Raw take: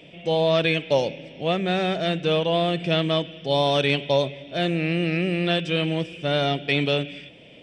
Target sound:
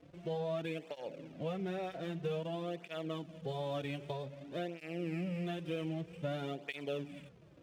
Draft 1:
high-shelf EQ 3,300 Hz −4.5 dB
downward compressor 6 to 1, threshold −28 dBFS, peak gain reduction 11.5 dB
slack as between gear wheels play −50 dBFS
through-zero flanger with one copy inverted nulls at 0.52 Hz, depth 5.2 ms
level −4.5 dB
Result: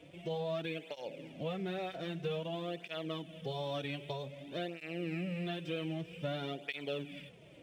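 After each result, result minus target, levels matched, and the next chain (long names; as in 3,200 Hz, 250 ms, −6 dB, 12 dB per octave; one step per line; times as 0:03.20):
slack as between gear wheels: distortion −7 dB; 4,000 Hz band +4.5 dB
high-shelf EQ 3,300 Hz −4.5 dB
downward compressor 6 to 1, threshold −28 dBFS, peak gain reduction 11.5 dB
slack as between gear wheels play −42.5 dBFS
through-zero flanger with one copy inverted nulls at 0.52 Hz, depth 5.2 ms
level −4.5 dB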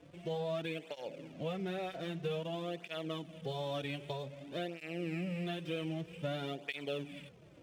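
4,000 Hz band +4.0 dB
high-shelf EQ 3,300 Hz −13.5 dB
downward compressor 6 to 1, threshold −28 dBFS, peak gain reduction 11.5 dB
slack as between gear wheels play −42.5 dBFS
through-zero flanger with one copy inverted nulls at 0.52 Hz, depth 5.2 ms
level −4.5 dB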